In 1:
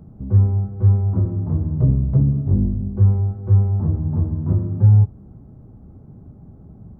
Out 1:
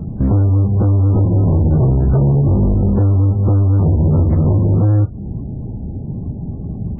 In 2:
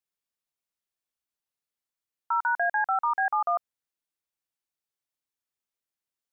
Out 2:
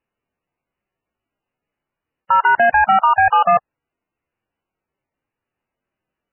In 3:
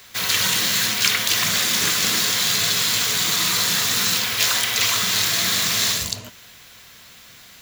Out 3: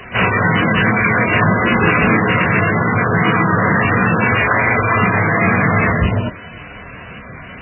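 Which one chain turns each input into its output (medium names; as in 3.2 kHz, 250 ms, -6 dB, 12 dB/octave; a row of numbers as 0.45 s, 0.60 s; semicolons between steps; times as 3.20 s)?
tilt shelf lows +4.5 dB, about 820 Hz; compression 8:1, threshold -17 dBFS; hard clipper -23.5 dBFS; MP3 8 kbps 12 kHz; normalise loudness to -14 LUFS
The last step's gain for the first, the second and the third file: +13.5 dB, +15.5 dB, +17.5 dB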